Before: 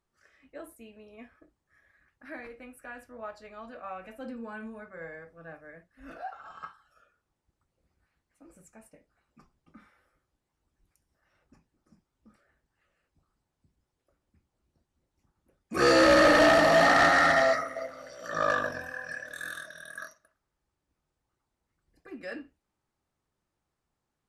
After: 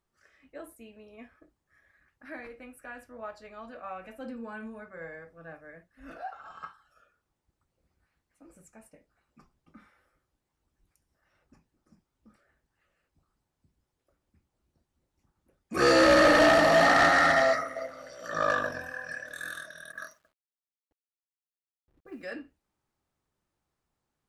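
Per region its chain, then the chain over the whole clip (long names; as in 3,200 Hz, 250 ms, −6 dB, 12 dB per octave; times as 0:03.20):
0:19.92–0:22.30: low-pass that shuts in the quiet parts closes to 350 Hz, open at −40 dBFS + bit-depth reduction 12 bits, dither none + one half of a high-frequency compander decoder only
whole clip: no processing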